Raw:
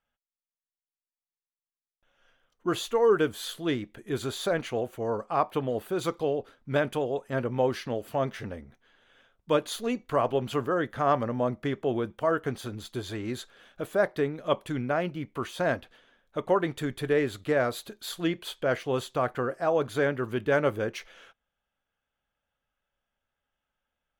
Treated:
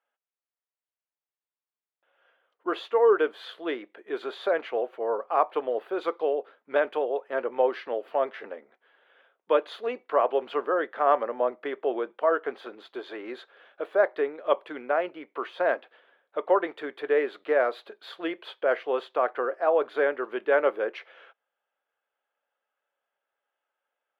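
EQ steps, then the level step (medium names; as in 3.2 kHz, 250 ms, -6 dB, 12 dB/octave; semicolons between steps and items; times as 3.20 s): high-pass 400 Hz 24 dB/octave; distance through air 400 m; +4.5 dB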